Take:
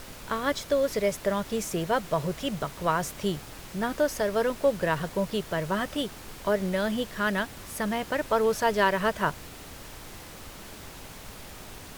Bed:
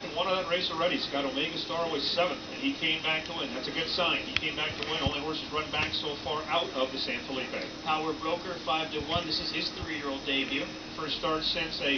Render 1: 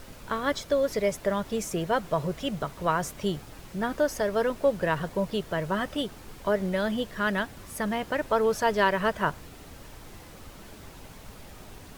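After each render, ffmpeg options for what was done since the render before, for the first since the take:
-af "afftdn=nr=6:nf=-44"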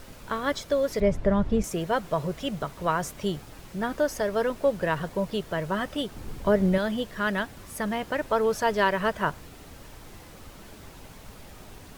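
-filter_complex "[0:a]asettb=1/sr,asplit=3[a][b][c];[a]atrim=end=1.004[d];[b]atrim=start=1:end=1.64,asetpts=PTS-STARTPTS,afade=t=in:d=0.004:c=qsin,afade=t=out:st=0.636:d=0.004:c=qsin,aemphasis=mode=reproduction:type=riaa[e];[c]atrim=start=1.636[f];[d][e]acrossfade=d=0.004:c1=hsin:c2=qsin[g];[g][f]acrossfade=d=0.004:c1=qsin:c2=hsin,asettb=1/sr,asplit=3[h][i][j];[h]atrim=end=6.154[k];[i]atrim=start=6.15:end=6.78,asetpts=PTS-STARTPTS,afade=t=in:d=0.004:c=qsin,afade=t=out:st=0.626:d=0.004:c=qsin,lowshelf=f=390:g=9.5[l];[j]atrim=start=6.776[m];[k][l]acrossfade=d=0.004:c1=hsin:c2=qsin[n];[n][m]acrossfade=d=0.004:c1=qsin:c2=hsin"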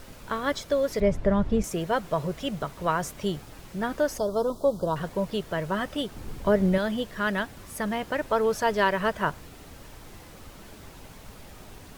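-filter_complex "[0:a]asettb=1/sr,asplit=3[a][b][c];[a]atrim=end=4.184[d];[b]atrim=start=4.18:end=4.96,asetpts=PTS-STARTPTS,afade=t=in:d=0.004:c=qsin,afade=t=out:st=0.776:d=0.004:c=qsin,asuperstop=centerf=2100:order=8:qfactor=0.94[e];[c]atrim=start=4.956[f];[d][e]acrossfade=d=0.004:c1=hsin:c2=qsin[g];[g][f]acrossfade=d=0.004:c1=qsin:c2=hsin"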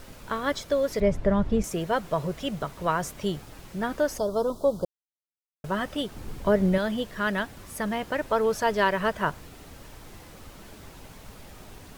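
-filter_complex "[0:a]asplit=3[a][b][c];[a]atrim=end=4.85,asetpts=PTS-STARTPTS,afade=t=out:st=4.846:d=0.004:c=hsin[d];[b]atrim=start=4.85:end=5.64,asetpts=PTS-STARTPTS,volume=0[e];[c]atrim=start=5.64,asetpts=PTS-STARTPTS,afade=t=in:d=0.004:c=hsin[f];[d][e][f]concat=n=3:v=0:a=1"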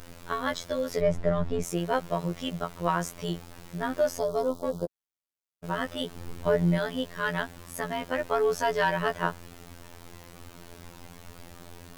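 -filter_complex "[0:a]asplit=2[a][b];[b]asoftclip=type=hard:threshold=-21.5dB,volume=-11dB[c];[a][c]amix=inputs=2:normalize=0,afftfilt=real='hypot(re,im)*cos(PI*b)':imag='0':win_size=2048:overlap=0.75"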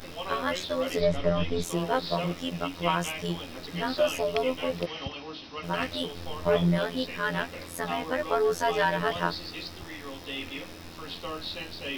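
-filter_complex "[1:a]volume=-7dB[a];[0:a][a]amix=inputs=2:normalize=0"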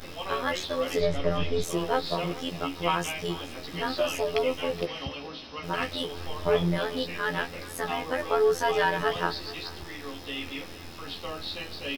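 -filter_complex "[0:a]asplit=2[a][b];[b]adelay=14,volume=-8dB[c];[a][c]amix=inputs=2:normalize=0,aecho=1:1:427|854|1281:0.126|0.0378|0.0113"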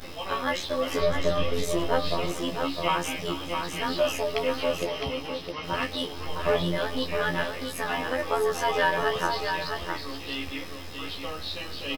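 -filter_complex "[0:a]asplit=2[a][b];[b]adelay=15,volume=-7.5dB[c];[a][c]amix=inputs=2:normalize=0,aecho=1:1:660:0.531"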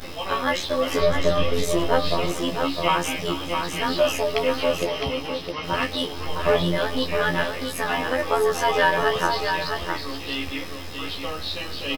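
-af "volume=4.5dB"

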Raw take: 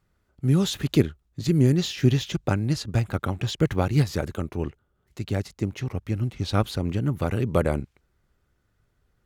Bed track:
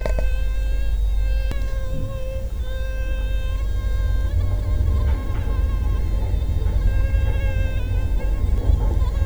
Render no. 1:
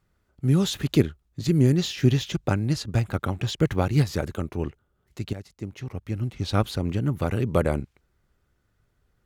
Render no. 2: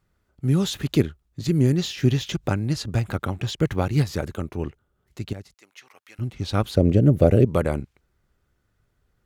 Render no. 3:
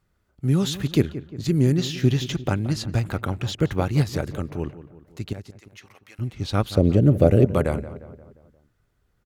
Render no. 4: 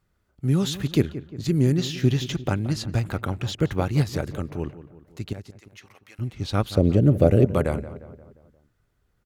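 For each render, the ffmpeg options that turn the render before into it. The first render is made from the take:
-filter_complex "[0:a]asplit=2[a][b];[a]atrim=end=5.33,asetpts=PTS-STARTPTS,afade=t=out:st=5.326:d=0.004:c=hsin:silence=0.223872[c];[b]atrim=start=5.33,asetpts=PTS-STARTPTS,afade=t=in:d=1.18:silence=0.223872[d];[c][d]concat=n=2:v=0:a=1"
-filter_complex "[0:a]asettb=1/sr,asplit=3[a][b][c];[a]atrim=end=2.294[d];[b]atrim=start=2.29:end=3.28,asetpts=PTS-STARTPTS,afade=t=in:d=0.004:c=qsin,afade=t=out:st=0.986:d=0.004:c=qsin,acompressor=mode=upward:threshold=-24dB:ratio=2.5:attack=3.2:release=140:knee=2.83:detection=peak[e];[c]atrim=start=3.276[f];[d][e]acrossfade=d=0.004:c1=hsin:c2=qsin[g];[g][f]acrossfade=d=0.004:c1=qsin:c2=hsin,asettb=1/sr,asplit=3[h][i][j];[h]atrim=end=5.544[k];[i]atrim=start=5.54:end=6.19,asetpts=PTS-STARTPTS,afade=t=in:d=0.004:c=qsin,afade=t=out:st=0.646:d=0.004:c=qsin,highpass=1.2k[l];[j]atrim=start=6.186[m];[k][l]acrossfade=d=0.004:c1=hsin:c2=qsin[n];[n][m]acrossfade=d=0.004:c1=qsin:c2=hsin,asettb=1/sr,asplit=3[o][p][q];[o]atrim=end=6.774[r];[p]atrim=start=6.77:end=7.45,asetpts=PTS-STARTPTS,afade=t=in:d=0.004:c=qsin,afade=t=out:st=0.676:d=0.004:c=qsin,lowshelf=f=750:t=q:w=3:g=8[s];[q]atrim=start=7.446[t];[r][s]acrossfade=d=0.004:c1=hsin:c2=qsin[u];[u][t]acrossfade=d=0.004:c1=qsin:c2=hsin"
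-filter_complex "[0:a]asplit=2[a][b];[b]adelay=176,lowpass=f=2.2k:p=1,volume=-14dB,asplit=2[c][d];[d]adelay=176,lowpass=f=2.2k:p=1,volume=0.53,asplit=2[e][f];[f]adelay=176,lowpass=f=2.2k:p=1,volume=0.53,asplit=2[g][h];[h]adelay=176,lowpass=f=2.2k:p=1,volume=0.53,asplit=2[i][j];[j]adelay=176,lowpass=f=2.2k:p=1,volume=0.53[k];[a][c][e][g][i][k]amix=inputs=6:normalize=0"
-af "volume=-1dB"

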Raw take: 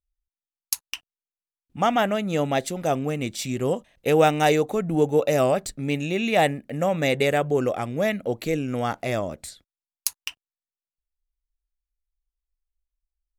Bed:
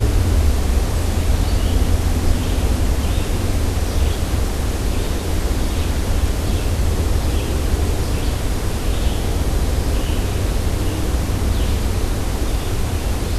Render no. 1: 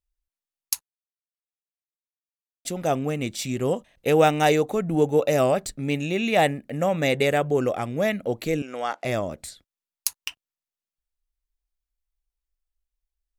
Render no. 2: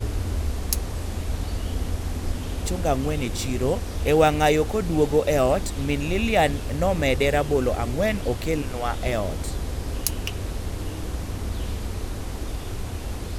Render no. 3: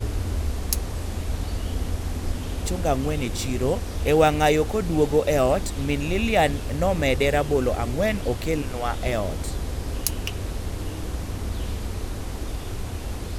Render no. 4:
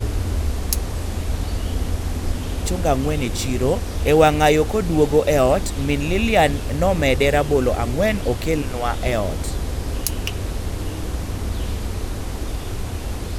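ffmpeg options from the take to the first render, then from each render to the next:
-filter_complex "[0:a]asettb=1/sr,asplit=3[a][b][c];[a]atrim=end=8.624[d];[b]atrim=start=8.62:end=9.05,asetpts=PTS-STARTPTS,afade=t=in:d=0.004:c=qsin,afade=t=out:st=0.426:d=0.004:c=qsin,highpass=490,lowpass=8k[e];[c]atrim=start=9.046[f];[d][e]acrossfade=d=0.004:c1=hsin:c2=qsin[g];[g][f]acrossfade=d=0.004:c1=qsin:c2=hsin,asplit=3[h][i][j];[h]atrim=end=0.83,asetpts=PTS-STARTPTS,afade=t=out:st=0.826:d=0.004:c=hsin[k];[i]atrim=start=0.83:end=2.65,asetpts=PTS-STARTPTS,volume=0[l];[j]atrim=start=2.65,asetpts=PTS-STARTPTS,afade=t=in:d=0.004:c=hsin[m];[k][l][m]concat=n=3:v=0:a=1"
-filter_complex "[1:a]volume=-10.5dB[a];[0:a][a]amix=inputs=2:normalize=0"
-af anull
-af "volume=4dB,alimiter=limit=-1dB:level=0:latency=1"

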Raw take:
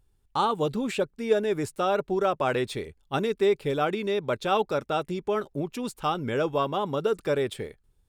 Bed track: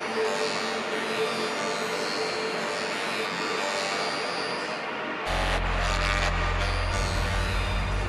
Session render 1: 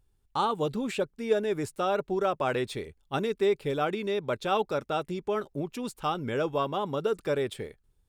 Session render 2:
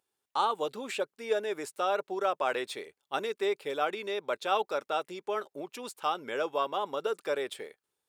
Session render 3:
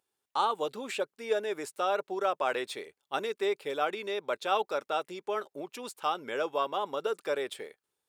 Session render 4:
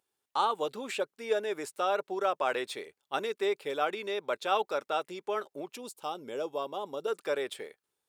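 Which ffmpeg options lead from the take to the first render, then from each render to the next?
-af "volume=-2.5dB"
-af "highpass=490"
-af anull
-filter_complex "[0:a]asettb=1/sr,asplit=3[a][b][c];[a]atrim=end=5.774[d];[b]atrim=start=5.77:end=7.08,asetpts=PTS-STARTPTS,afade=t=in:d=0.004:c=qsin,afade=t=out:st=1.306:d=0.004:c=qsin,equalizer=f=1.7k:t=o:w=1.7:g=-13[e];[c]atrim=start=7.076[f];[d][e]acrossfade=d=0.004:c1=hsin:c2=qsin[g];[g][f]acrossfade=d=0.004:c1=qsin:c2=hsin"

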